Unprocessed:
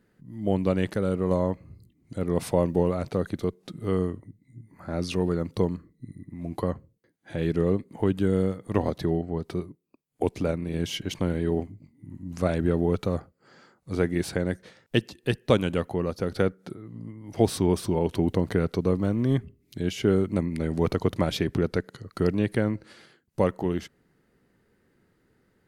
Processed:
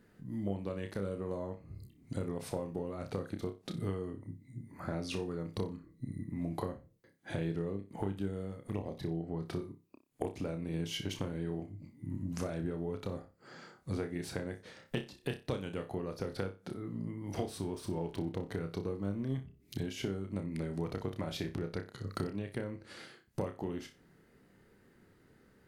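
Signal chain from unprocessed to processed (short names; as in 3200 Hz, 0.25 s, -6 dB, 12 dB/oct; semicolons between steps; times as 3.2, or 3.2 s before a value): compressor 12:1, threshold -35 dBFS, peak gain reduction 21.5 dB; 8.63–9.21 envelope flanger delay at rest 6.1 ms, full sweep at -35.5 dBFS; 17.59–18.5 backlash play -57.5 dBFS; flutter echo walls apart 5.2 m, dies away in 0.27 s; gain +1.5 dB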